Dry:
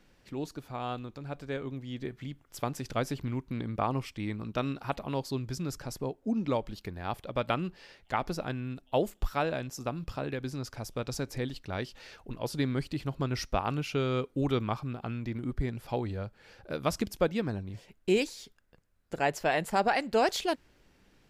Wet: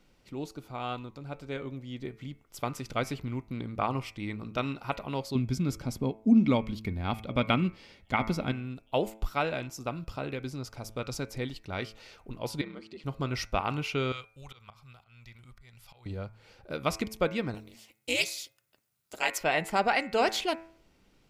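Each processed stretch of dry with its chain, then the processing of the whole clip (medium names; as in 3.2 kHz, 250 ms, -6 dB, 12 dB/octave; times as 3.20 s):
5.35–8.52 s: peaking EQ 79 Hz +9.5 dB 1.6 oct + small resonant body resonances 230/2200/3300 Hz, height 10 dB, ringing for 35 ms
12.61–13.04 s: compression 3:1, threshold -31 dBFS + ring modulator 78 Hz + band-pass 230–5200 Hz
14.12–16.06 s: amplifier tone stack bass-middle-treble 10-0-10 + slow attack 180 ms
17.54–19.38 s: ring modulator 120 Hz + tilt EQ +4 dB/octave
whole clip: band-stop 1.7 kHz, Q 6.6; de-hum 109.5 Hz, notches 24; dynamic bell 2.1 kHz, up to +7 dB, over -47 dBFS, Q 0.88; trim -1 dB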